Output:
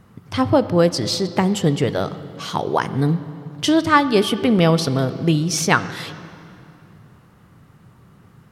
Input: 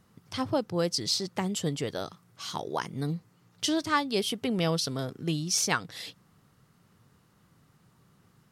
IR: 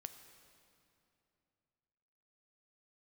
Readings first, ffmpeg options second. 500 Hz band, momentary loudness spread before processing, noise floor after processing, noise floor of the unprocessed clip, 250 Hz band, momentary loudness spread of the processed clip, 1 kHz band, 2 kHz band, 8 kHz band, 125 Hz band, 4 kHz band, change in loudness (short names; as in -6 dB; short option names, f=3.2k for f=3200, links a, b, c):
+12.5 dB, 12 LU, -51 dBFS, -65 dBFS, +13.0 dB, 13 LU, +12.0 dB, +11.5 dB, +4.0 dB, +13.5 dB, +6.0 dB, +11.0 dB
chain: -filter_complex "[0:a]asplit=2[a][b];[1:a]atrim=start_sample=2205,lowpass=3.2k,lowshelf=f=130:g=6[c];[b][c]afir=irnorm=-1:irlink=0,volume=7dB[d];[a][d]amix=inputs=2:normalize=0,volume=5.5dB"